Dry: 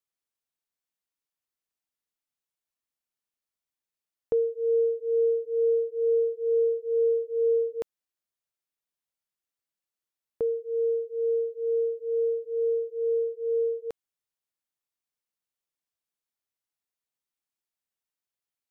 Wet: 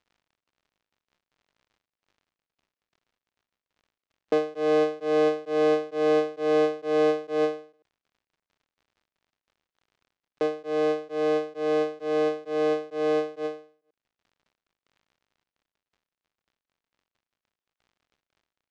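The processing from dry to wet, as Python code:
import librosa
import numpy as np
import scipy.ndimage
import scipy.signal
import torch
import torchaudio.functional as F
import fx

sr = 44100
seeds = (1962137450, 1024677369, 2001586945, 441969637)

y = fx.cycle_switch(x, sr, every=3, mode='muted')
y = scipy.signal.sosfilt(scipy.signal.butter(4, 200.0, 'highpass', fs=sr, output='sos'), y)
y = fx.dmg_crackle(y, sr, seeds[0], per_s=100.0, level_db=-52.0)
y = fx.air_absorb(y, sr, metres=140.0)
y = fx.end_taper(y, sr, db_per_s=140.0)
y = F.gain(torch.from_numpy(y), 4.5).numpy()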